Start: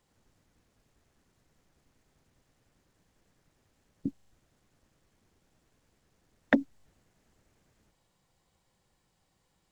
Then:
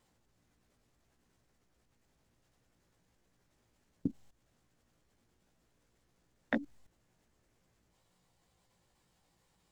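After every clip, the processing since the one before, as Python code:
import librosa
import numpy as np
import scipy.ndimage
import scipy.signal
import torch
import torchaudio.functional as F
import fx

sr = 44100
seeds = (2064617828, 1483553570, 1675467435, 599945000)

y = fx.vibrato(x, sr, rate_hz=8.5, depth_cents=73.0)
y = fx.doubler(y, sr, ms=17.0, db=-4.0)
y = fx.level_steps(y, sr, step_db=15)
y = F.gain(torch.from_numpy(y), 1.0).numpy()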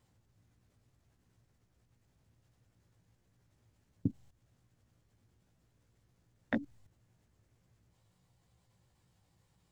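y = fx.peak_eq(x, sr, hz=100.0, db=13.5, octaves=1.3)
y = F.gain(torch.from_numpy(y), -2.5).numpy()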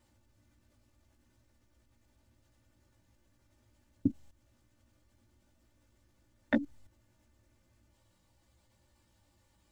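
y = x + 0.95 * np.pad(x, (int(3.4 * sr / 1000.0), 0))[:len(x)]
y = F.gain(torch.from_numpy(y), 1.0).numpy()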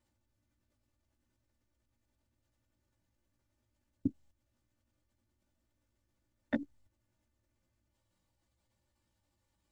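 y = fx.level_steps(x, sr, step_db=13)
y = F.gain(torch.from_numpy(y), -2.0).numpy()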